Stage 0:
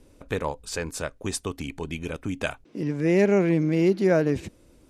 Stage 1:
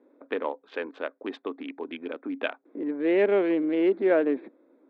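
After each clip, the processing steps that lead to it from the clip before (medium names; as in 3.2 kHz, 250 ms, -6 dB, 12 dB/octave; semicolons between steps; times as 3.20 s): local Wiener filter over 15 samples; Chebyshev band-pass 260–3500 Hz, order 4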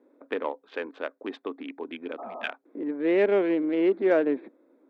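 Chebyshev shaper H 7 -37 dB, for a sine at -11.5 dBFS; spectral replace 2.21–2.46 s, 240–1300 Hz after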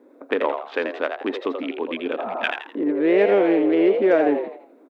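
compression 2:1, threshold -27 dBFS, peak gain reduction 6 dB; on a send: frequency-shifting echo 83 ms, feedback 34%, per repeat +100 Hz, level -6.5 dB; on the sum: trim +9 dB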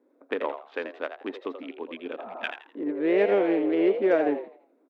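upward expansion 1.5:1, over -33 dBFS; trim -4 dB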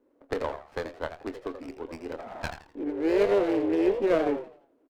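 doubling 25 ms -12 dB; sliding maximum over 9 samples; trim -1.5 dB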